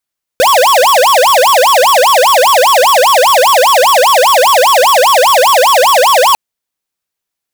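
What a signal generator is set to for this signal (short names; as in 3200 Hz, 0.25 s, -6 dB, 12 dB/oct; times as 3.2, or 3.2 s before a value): siren wail 491–1130 Hz 5/s square -7 dBFS 5.95 s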